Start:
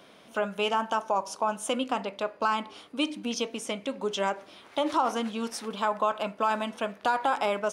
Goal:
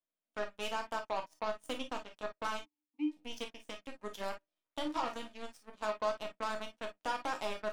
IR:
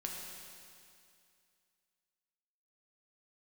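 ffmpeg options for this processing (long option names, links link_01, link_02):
-filter_complex "[0:a]aeval=exprs='0.2*(cos(1*acos(clip(val(0)/0.2,-1,1)))-cos(1*PI/2))+0.00282*(cos(6*acos(clip(val(0)/0.2,-1,1)))-cos(6*PI/2))+0.0282*(cos(7*acos(clip(val(0)/0.2,-1,1)))-cos(7*PI/2))':channel_layout=same,asplit=3[link_01][link_02][link_03];[link_01]afade=type=out:start_time=2.58:duration=0.02[link_04];[link_02]asplit=3[link_05][link_06][link_07];[link_05]bandpass=frequency=300:width_type=q:width=8,volume=0dB[link_08];[link_06]bandpass=frequency=870:width_type=q:width=8,volume=-6dB[link_09];[link_07]bandpass=frequency=2240:width_type=q:width=8,volume=-9dB[link_10];[link_08][link_09][link_10]amix=inputs=3:normalize=0,afade=type=in:start_time=2.58:duration=0.02,afade=type=out:start_time=3.07:duration=0.02[link_11];[link_03]afade=type=in:start_time=3.07:duration=0.02[link_12];[link_04][link_11][link_12]amix=inputs=3:normalize=0[link_13];[1:a]atrim=start_sample=2205,afade=type=out:start_time=0.15:duration=0.01,atrim=end_sample=7056,asetrate=74970,aresample=44100[link_14];[link_13][link_14]afir=irnorm=-1:irlink=0,volume=-3.5dB"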